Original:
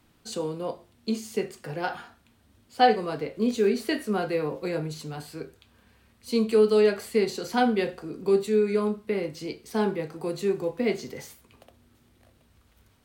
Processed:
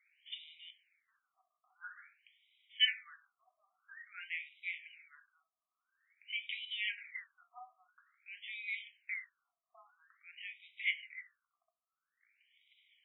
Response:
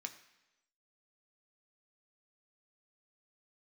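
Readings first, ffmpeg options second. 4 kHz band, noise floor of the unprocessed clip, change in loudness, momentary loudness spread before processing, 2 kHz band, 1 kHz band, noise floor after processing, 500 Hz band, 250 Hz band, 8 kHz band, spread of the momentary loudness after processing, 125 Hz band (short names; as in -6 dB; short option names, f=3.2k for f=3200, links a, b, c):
-0.5 dB, -63 dBFS, -12.5 dB, 16 LU, -4.0 dB, -31.5 dB, under -85 dBFS, under -40 dB, under -40 dB, under -35 dB, 22 LU, under -40 dB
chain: -filter_complex "[0:a]crystalizer=i=5:c=0,asplit=3[a][b][c];[a]bandpass=f=270:t=q:w=8,volume=0dB[d];[b]bandpass=f=2.29k:t=q:w=8,volume=-6dB[e];[c]bandpass=f=3.01k:t=q:w=8,volume=-9dB[f];[d][e][f]amix=inputs=3:normalize=0,acontrast=66,afftfilt=real='re*between(b*sr/1024,900*pow(2800/900,0.5+0.5*sin(2*PI*0.49*pts/sr))/1.41,900*pow(2800/900,0.5+0.5*sin(2*PI*0.49*pts/sr))*1.41)':imag='im*between(b*sr/1024,900*pow(2800/900,0.5+0.5*sin(2*PI*0.49*pts/sr))/1.41,900*pow(2800/900,0.5+0.5*sin(2*PI*0.49*pts/sr))*1.41)':win_size=1024:overlap=0.75"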